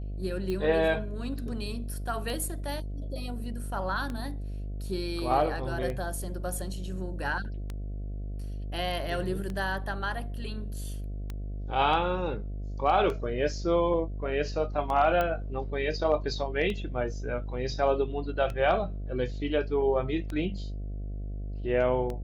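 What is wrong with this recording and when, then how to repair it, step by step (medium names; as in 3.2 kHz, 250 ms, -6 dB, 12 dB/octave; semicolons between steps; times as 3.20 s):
buzz 50 Hz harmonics 14 -35 dBFS
tick 33 1/3 rpm -22 dBFS
15.21 s: pop -16 dBFS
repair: de-click; de-hum 50 Hz, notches 14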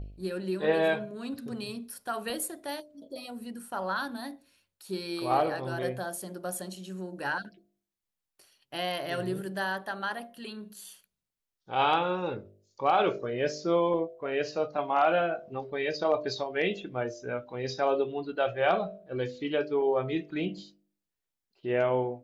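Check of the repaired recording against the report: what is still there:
15.21 s: pop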